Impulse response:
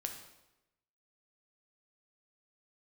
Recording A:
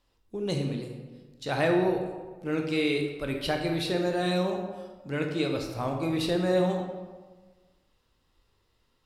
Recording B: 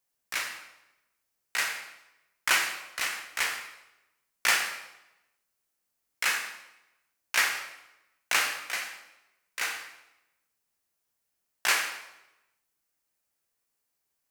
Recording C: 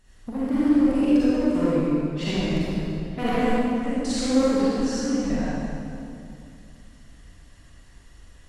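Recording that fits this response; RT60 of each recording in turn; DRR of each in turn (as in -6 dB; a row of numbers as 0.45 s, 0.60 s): B; 1.4 s, 0.95 s, 2.5 s; 2.5 dB, 3.5 dB, -10.5 dB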